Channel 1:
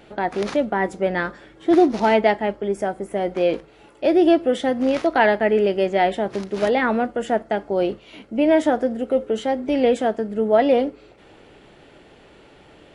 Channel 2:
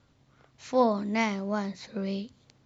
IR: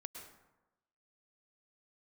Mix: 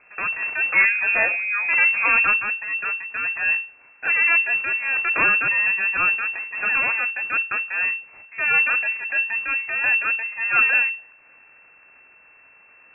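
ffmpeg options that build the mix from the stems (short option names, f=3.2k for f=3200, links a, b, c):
-filter_complex "[0:a]highpass=350,aeval=exprs='abs(val(0))':c=same,volume=-0.5dB[a];[1:a]aecho=1:1:5.5:0.79,volume=3dB[b];[a][b]amix=inputs=2:normalize=0,lowpass=f=2.3k:t=q:w=0.5098,lowpass=f=2.3k:t=q:w=0.6013,lowpass=f=2.3k:t=q:w=0.9,lowpass=f=2.3k:t=q:w=2.563,afreqshift=-2700"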